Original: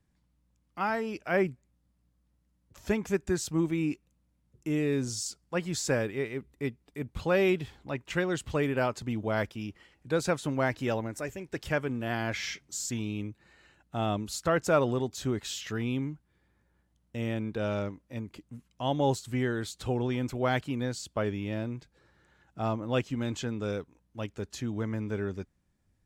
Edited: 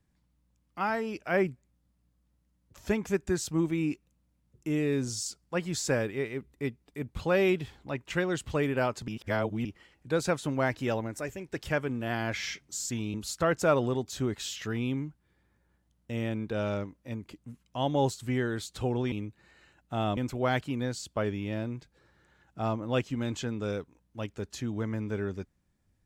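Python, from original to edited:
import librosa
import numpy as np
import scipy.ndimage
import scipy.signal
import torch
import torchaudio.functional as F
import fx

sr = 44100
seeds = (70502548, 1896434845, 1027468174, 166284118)

y = fx.edit(x, sr, fx.reverse_span(start_s=9.08, length_s=0.57),
    fx.move(start_s=13.14, length_s=1.05, to_s=20.17), tone=tone)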